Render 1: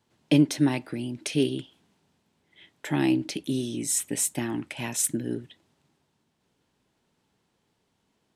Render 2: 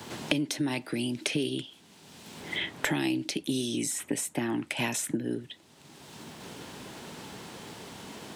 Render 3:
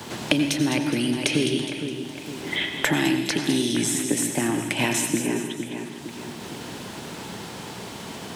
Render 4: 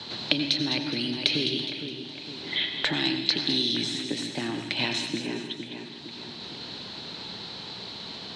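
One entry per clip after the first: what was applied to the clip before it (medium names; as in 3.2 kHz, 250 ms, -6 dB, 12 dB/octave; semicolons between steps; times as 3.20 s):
peak limiter -16.5 dBFS, peak gain reduction 7 dB; high-pass 140 Hz 6 dB/octave; three bands compressed up and down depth 100%
two-band feedback delay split 2.7 kHz, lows 460 ms, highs 207 ms, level -8.5 dB; reverberation RT60 1.0 s, pre-delay 80 ms, DRR 6.5 dB; trim +6 dB
resonant low-pass 4.1 kHz, resonance Q 8.9; trim -7.5 dB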